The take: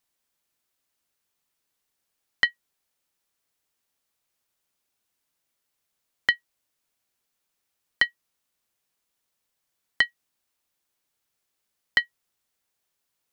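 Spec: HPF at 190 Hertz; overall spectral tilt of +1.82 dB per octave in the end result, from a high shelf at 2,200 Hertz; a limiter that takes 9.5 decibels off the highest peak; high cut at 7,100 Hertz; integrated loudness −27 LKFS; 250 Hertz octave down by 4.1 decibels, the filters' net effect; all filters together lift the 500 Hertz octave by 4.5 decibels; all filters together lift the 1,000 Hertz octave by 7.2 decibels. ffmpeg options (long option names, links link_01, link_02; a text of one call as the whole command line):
ffmpeg -i in.wav -af "highpass=190,lowpass=7100,equalizer=frequency=250:width_type=o:gain=-6.5,equalizer=frequency=500:width_type=o:gain=4.5,equalizer=frequency=1000:width_type=o:gain=7,highshelf=frequency=2200:gain=6,volume=2.5dB,alimiter=limit=-9dB:level=0:latency=1" out.wav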